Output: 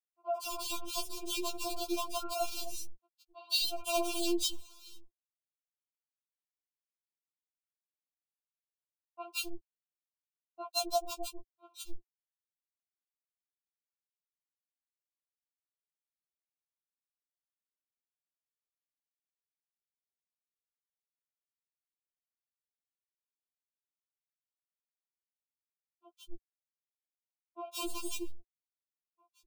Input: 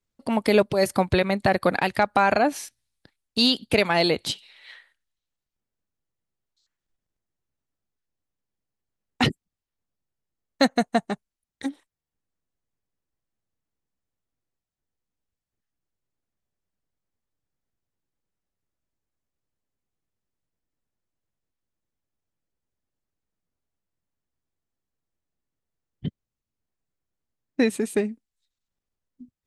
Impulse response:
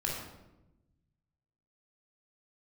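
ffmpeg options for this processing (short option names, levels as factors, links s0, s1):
-filter_complex "[0:a]highpass=83,bass=f=250:g=-8,treble=f=4000:g=2,acompressor=threshold=0.0562:ratio=5,acrusher=bits=5:dc=4:mix=0:aa=0.000001,asuperstop=centerf=1800:order=12:qfactor=1.5,acrossover=split=470|1500[s0][s1][s2];[s2]adelay=160[s3];[s0]adelay=260[s4];[s4][s1][s3]amix=inputs=3:normalize=0,afftfilt=real='re*4*eq(mod(b,16),0)':imag='im*4*eq(mod(b,16),0)':win_size=2048:overlap=0.75,volume=0.891"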